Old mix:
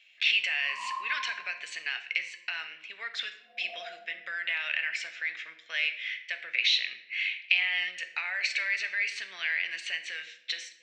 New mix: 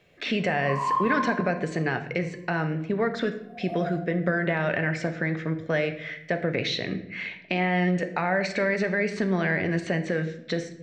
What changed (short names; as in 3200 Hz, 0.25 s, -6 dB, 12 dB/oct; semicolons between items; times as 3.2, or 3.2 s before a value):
speech: remove resonant high-pass 2700 Hz, resonance Q 3; background +11.0 dB